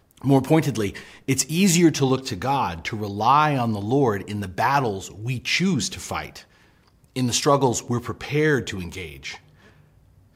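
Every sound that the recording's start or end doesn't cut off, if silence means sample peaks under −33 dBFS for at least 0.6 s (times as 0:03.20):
0:07.16–0:09.37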